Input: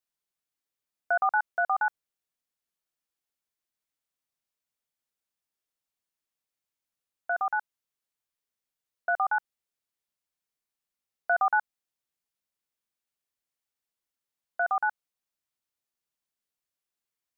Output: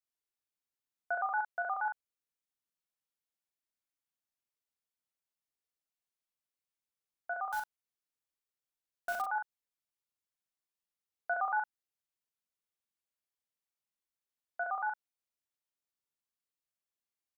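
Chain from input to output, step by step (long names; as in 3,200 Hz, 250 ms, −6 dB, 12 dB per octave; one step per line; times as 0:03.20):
0:07.52–0:09.22: one scale factor per block 3 bits
double-tracking delay 41 ms −5 dB
level −8 dB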